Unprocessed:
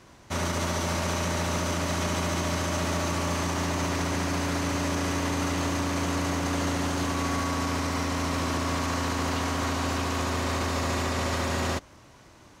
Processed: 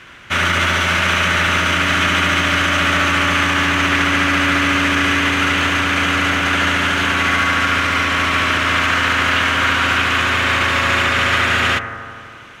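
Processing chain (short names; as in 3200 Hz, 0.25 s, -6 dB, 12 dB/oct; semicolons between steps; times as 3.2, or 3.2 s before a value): band shelf 2100 Hz +15 dB; notch 1900 Hz, Q 30; on a send: analogue delay 81 ms, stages 1024, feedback 79%, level -10.5 dB; on the sum: gain +5 dB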